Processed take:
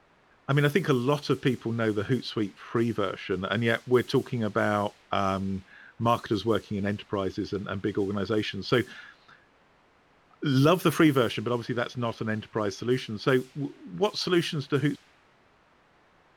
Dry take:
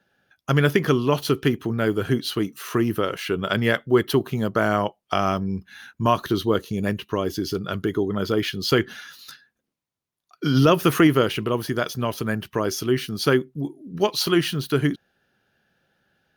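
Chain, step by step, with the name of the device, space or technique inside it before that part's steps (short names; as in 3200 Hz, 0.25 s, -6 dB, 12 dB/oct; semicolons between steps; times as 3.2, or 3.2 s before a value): cassette deck with a dynamic noise filter (white noise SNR 23 dB; low-pass opened by the level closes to 1400 Hz, open at -14 dBFS); gain -4.5 dB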